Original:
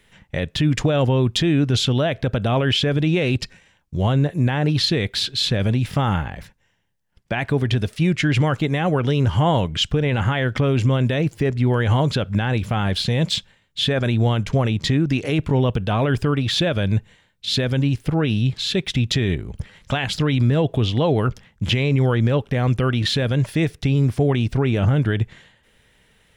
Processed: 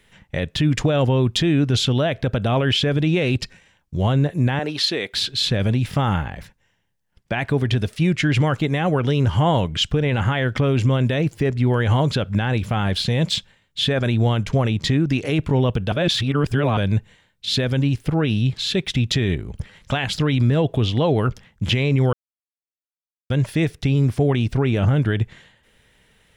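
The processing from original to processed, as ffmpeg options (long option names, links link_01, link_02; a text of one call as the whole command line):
ffmpeg -i in.wav -filter_complex "[0:a]asettb=1/sr,asplit=3[link_01][link_02][link_03];[link_01]atrim=end=4.594[link_04];[link_02]atrim=start=4.59:end=5.13,asetpts=PTS-STARTPTS,afade=type=in:duration=0.004:curve=qsin,afade=type=out:start_time=0.536:duration=0.004:curve=qsin,highpass=350[link_05];[link_03]atrim=start=5.126[link_06];[link_04][link_05]acrossfade=duration=0.004:curve1=hsin:curve2=qsin[link_07];[link_07][link_06]acrossfade=duration=0.004:curve1=qsin:curve2=hsin,asplit=5[link_08][link_09][link_10][link_11][link_12];[link_08]atrim=end=15.922[link_13];[link_09]atrim=start=15.918:end=16.772,asetpts=PTS-STARTPTS,areverse[link_14];[link_10]atrim=start=16.768:end=22.13,asetpts=PTS-STARTPTS,afade=type=out:start_time=5.358:duration=0.004:curve=hsin[link_15];[link_11]atrim=start=22.13:end=23.3,asetpts=PTS-STARTPTS,volume=0[link_16];[link_12]atrim=start=23.3,asetpts=PTS-STARTPTS,afade=type=in:duration=0.004:curve=hsin[link_17];[link_13][link_14]acrossfade=duration=0.004:curve1=hsin:curve2=hsin[link_18];[link_15][link_16][link_17]concat=n=3:v=0:a=1[link_19];[link_18][link_19]acrossfade=duration=0.004:curve1=hsin:curve2=hsin" out.wav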